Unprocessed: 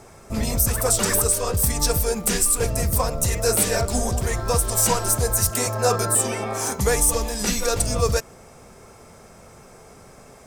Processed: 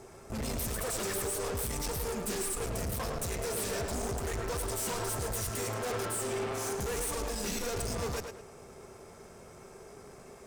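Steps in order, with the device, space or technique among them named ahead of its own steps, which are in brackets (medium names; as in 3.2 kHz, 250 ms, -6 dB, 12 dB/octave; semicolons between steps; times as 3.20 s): peaking EQ 390 Hz +10 dB 0.24 oct; rockabilly slapback (valve stage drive 30 dB, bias 0.7; tape echo 108 ms, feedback 33%, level -4.5 dB, low-pass 5 kHz); trim -3 dB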